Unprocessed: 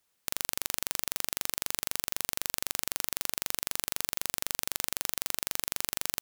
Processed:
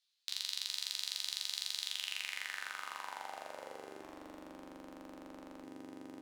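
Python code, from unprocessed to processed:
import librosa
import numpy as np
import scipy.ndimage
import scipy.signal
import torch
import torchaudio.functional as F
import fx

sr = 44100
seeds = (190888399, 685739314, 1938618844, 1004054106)

y = fx.filter_sweep_bandpass(x, sr, from_hz=4000.0, to_hz=300.0, start_s=1.79, end_s=4.19, q=3.9)
y = fx.resonator_bank(y, sr, root=36, chord='minor', decay_s=0.36)
y = fx.echo_feedback(y, sr, ms=407, feedback_pct=50, wet_db=-9.5)
y = fx.doppler_dist(y, sr, depth_ms=0.82, at=(4.01, 5.64))
y = y * librosa.db_to_amplitude(17.5)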